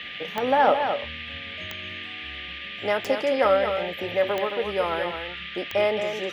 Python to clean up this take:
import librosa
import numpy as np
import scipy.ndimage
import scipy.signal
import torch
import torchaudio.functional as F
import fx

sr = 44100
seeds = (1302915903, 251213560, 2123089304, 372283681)

y = fx.fix_declick_ar(x, sr, threshold=10.0)
y = fx.notch(y, sr, hz=1200.0, q=30.0)
y = fx.noise_reduce(y, sr, print_start_s=2.3, print_end_s=2.8, reduce_db=30.0)
y = fx.fix_echo_inverse(y, sr, delay_ms=219, level_db=-7.0)